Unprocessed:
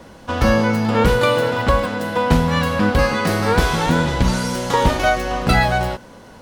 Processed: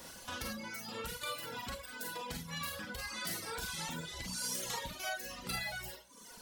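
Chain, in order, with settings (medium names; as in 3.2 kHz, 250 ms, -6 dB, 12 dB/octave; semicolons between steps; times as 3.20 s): wow and flutter 18 cents; reverb removal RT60 0.54 s; compression 3:1, threshold -34 dBFS, peak gain reduction 17.5 dB; pre-emphasis filter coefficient 0.9; Schroeder reverb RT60 0.54 s, combs from 33 ms, DRR -1 dB; reverb removal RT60 1.6 s; trim +4.5 dB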